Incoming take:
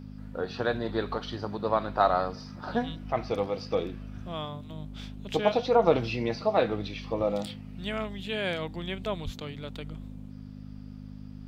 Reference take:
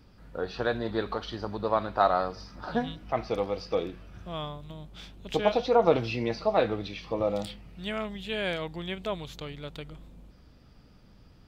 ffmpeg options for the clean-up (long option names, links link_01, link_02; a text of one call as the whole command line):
ffmpeg -i in.wav -filter_complex "[0:a]bandreject=frequency=51:width_type=h:width=4,bandreject=frequency=102:width_type=h:width=4,bandreject=frequency=153:width_type=h:width=4,bandreject=frequency=204:width_type=h:width=4,bandreject=frequency=255:width_type=h:width=4,asplit=3[link_01][link_02][link_03];[link_01]afade=type=out:start_time=9.24:duration=0.02[link_04];[link_02]highpass=frequency=140:width=0.5412,highpass=frequency=140:width=1.3066,afade=type=in:start_time=9.24:duration=0.02,afade=type=out:start_time=9.36:duration=0.02[link_05];[link_03]afade=type=in:start_time=9.36:duration=0.02[link_06];[link_04][link_05][link_06]amix=inputs=3:normalize=0" out.wav